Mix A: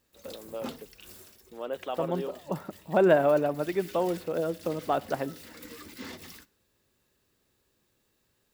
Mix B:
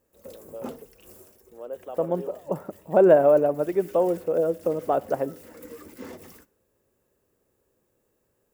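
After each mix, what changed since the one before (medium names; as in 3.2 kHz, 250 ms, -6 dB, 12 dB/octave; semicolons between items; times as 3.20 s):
first voice -8.0 dB; master: add graphic EQ 500/2000/4000 Hz +8/-3/-12 dB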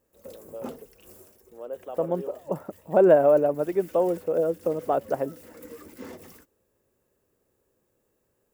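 reverb: off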